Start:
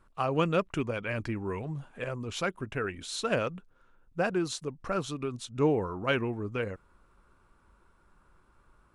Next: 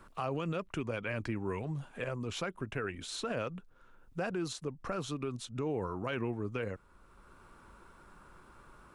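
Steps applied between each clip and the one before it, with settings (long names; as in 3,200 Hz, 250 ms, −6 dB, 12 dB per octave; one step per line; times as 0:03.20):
brickwall limiter −24.5 dBFS, peak gain reduction 10.5 dB
multiband upward and downward compressor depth 40%
level −2 dB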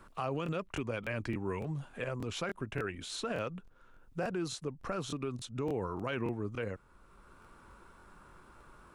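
regular buffer underruns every 0.29 s, samples 1,024, repeat, from 0:00.44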